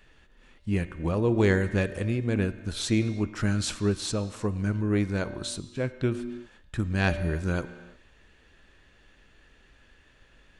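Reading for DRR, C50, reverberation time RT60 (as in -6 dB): 11.0 dB, 12.5 dB, not exponential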